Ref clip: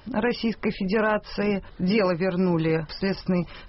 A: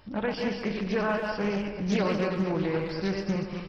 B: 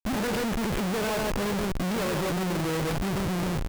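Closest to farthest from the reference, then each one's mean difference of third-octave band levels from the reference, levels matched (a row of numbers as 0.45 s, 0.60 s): A, B; 6.0 dB, 15.0 dB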